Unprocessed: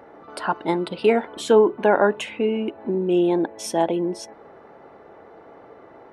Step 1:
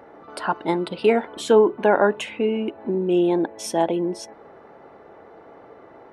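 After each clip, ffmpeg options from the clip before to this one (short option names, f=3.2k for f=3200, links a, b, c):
-af anull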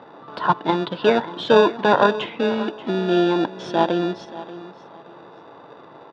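-filter_complex "[0:a]asplit=2[a][b];[b]acrusher=samples=42:mix=1:aa=0.000001,volume=-5dB[c];[a][c]amix=inputs=2:normalize=0,highpass=f=120:w=0.5412,highpass=f=120:w=1.3066,equalizer=f=230:t=q:w=4:g=-3,equalizer=f=390:t=q:w=4:g=-3,equalizer=f=1k:t=q:w=4:g=10,equalizer=f=2.4k:t=q:w=4:g=-5,equalizer=f=3.5k:t=q:w=4:g=7,lowpass=f=4.2k:w=0.5412,lowpass=f=4.2k:w=1.3066,aecho=1:1:584|1168:0.158|0.0396"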